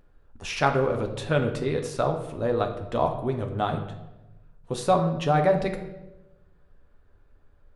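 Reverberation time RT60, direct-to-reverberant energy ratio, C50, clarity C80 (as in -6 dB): 1.0 s, 3.5 dB, 8.5 dB, 11.0 dB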